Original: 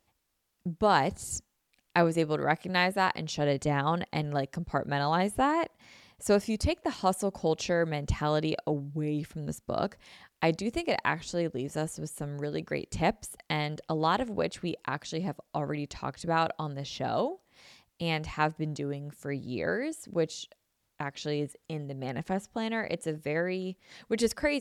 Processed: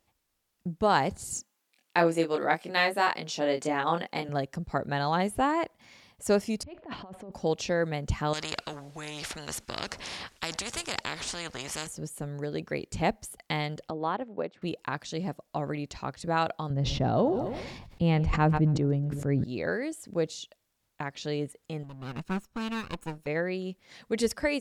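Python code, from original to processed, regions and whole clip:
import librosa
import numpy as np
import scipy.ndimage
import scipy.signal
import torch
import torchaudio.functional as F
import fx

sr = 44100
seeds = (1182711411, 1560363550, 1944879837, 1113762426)

y = fx.chain(x, sr, fx.highpass(hz=250.0, slope=12),
    fx.doubler(ms=24.0, db=-4.0), at=(1.33, 4.29))
y = fx.chain(y, sr, fx.over_compress(threshold_db=-39.0, ratio=-1.0),
    fx.air_absorb(metres=410.0), at=(6.63, 7.32))
y = fx.chain(y, sr, fx.lowpass(hz=8000.0, slope=12),
    fx.spectral_comp(ratio=4.0), at=(8.33, 11.87))
y = fx.chain(y, sr, fx.highpass(hz=210.0, slope=12),
    fx.spacing_loss(db_at_10k=34),
    fx.upward_expand(threshold_db=-38.0, expansion=1.5), at=(13.9, 14.62))
y = fx.chain(y, sr, fx.tilt_eq(slope=-3.5),
    fx.echo_feedback(ms=135, feedback_pct=46, wet_db=-21),
    fx.sustainer(db_per_s=40.0), at=(16.7, 19.44))
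y = fx.chain(y, sr, fx.lower_of_two(delay_ms=0.74),
    fx.upward_expand(threshold_db=-40.0, expansion=1.5), at=(21.83, 23.27))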